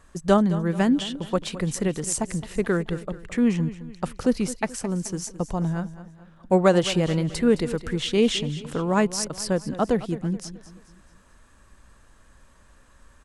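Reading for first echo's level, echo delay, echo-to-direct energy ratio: -15.0 dB, 0.215 s, -14.0 dB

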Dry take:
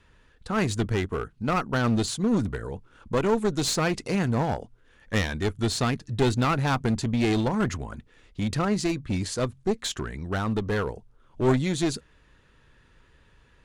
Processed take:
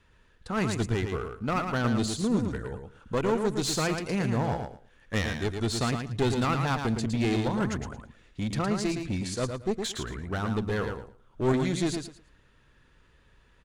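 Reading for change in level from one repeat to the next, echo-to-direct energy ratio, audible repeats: -14.5 dB, -6.0 dB, 3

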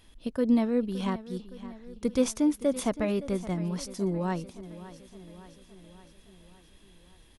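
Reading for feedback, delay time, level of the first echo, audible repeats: 59%, 0.566 s, -16.0 dB, 5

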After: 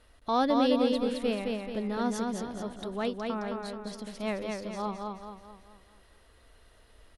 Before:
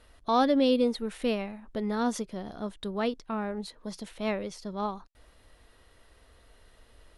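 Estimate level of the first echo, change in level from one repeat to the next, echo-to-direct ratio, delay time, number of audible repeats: -3.5 dB, -7.0 dB, -2.5 dB, 0.216 s, 5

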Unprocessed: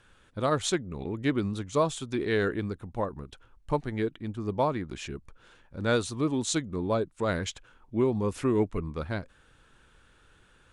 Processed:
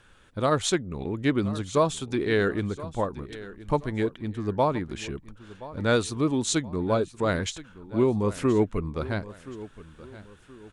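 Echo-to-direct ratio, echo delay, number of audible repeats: -16.5 dB, 1.024 s, 2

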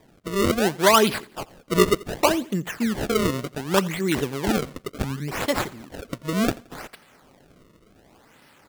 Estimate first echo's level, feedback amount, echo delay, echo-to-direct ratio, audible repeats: -21.0 dB, 34%, 86 ms, -20.5 dB, 2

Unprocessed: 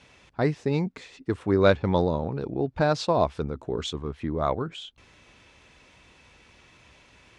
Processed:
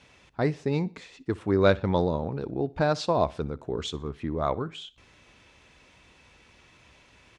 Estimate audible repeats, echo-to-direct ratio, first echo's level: 2, -21.5 dB, -22.0 dB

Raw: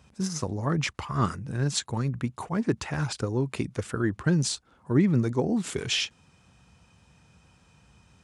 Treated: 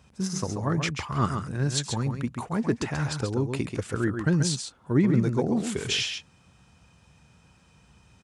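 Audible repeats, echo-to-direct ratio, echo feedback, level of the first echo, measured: 1, -6.5 dB, no steady repeat, -6.5 dB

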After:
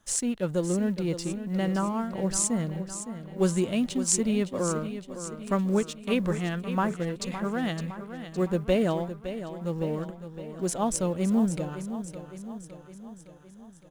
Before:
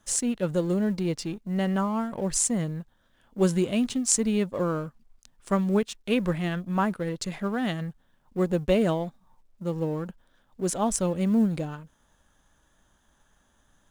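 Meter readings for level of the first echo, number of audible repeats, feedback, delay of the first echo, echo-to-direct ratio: -11.0 dB, 5, 57%, 0.562 s, -9.5 dB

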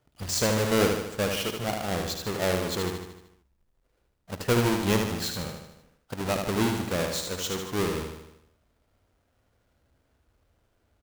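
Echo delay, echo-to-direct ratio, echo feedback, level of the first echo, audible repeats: 76 ms, -3.5 dB, 55%, -5.0 dB, 6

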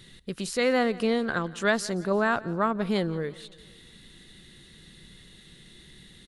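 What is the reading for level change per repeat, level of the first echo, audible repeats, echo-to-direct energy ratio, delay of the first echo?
-5.5 dB, -21.0 dB, 3, -19.5 dB, 0.173 s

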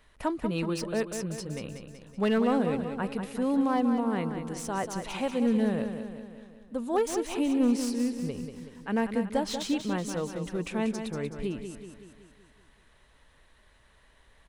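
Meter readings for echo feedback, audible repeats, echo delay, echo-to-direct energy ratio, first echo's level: 55%, 6, 0.188 s, -6.5 dB, -8.0 dB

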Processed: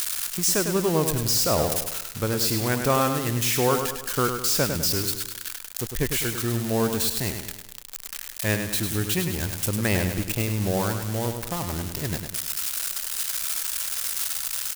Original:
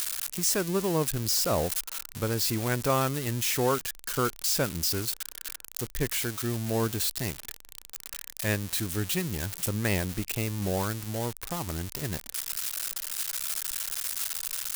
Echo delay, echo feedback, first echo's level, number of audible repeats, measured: 0.102 s, 46%, -7.0 dB, 5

